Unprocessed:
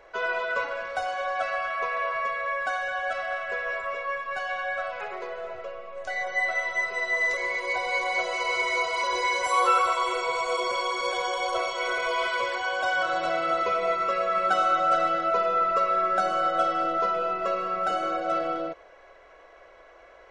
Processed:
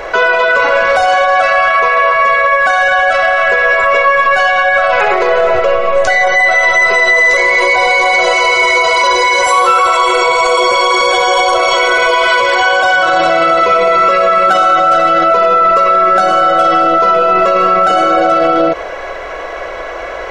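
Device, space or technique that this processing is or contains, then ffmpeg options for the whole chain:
loud club master: -af "acompressor=threshold=-29dB:ratio=2,asoftclip=type=hard:threshold=-20.5dB,alimiter=level_in=30.5dB:limit=-1dB:release=50:level=0:latency=1,volume=-1.5dB"

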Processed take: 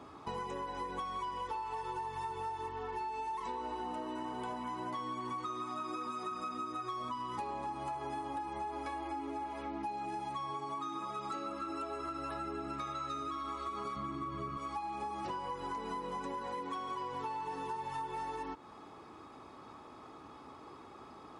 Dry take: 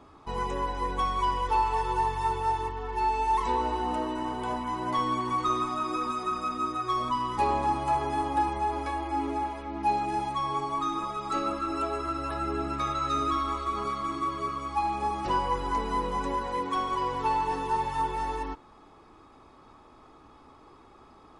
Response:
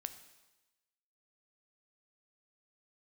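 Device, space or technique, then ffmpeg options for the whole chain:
serial compression, leveller first: -filter_complex "[0:a]highpass=100,asettb=1/sr,asplit=3[a][b][c];[a]atrim=end=13.964[d];[b]atrim=start=13.96:end=14.57,asetpts=PTS-STARTPTS,afade=t=in:d=0.004:c=qsin,afade=t=out:st=0.606:d=0.004:c=qsin,bass=f=250:g=12,treble=f=4k:g=-6[e];[c]atrim=start=14.566[f];[d][e]acrossfade=d=0.004:c1=hsin:c2=qsin[g];[g][f]acrossfade=d=0.004:c1=qsin:c2=hsin,acompressor=threshold=-30dB:ratio=2,acompressor=threshold=-40dB:ratio=5,volume=2dB"

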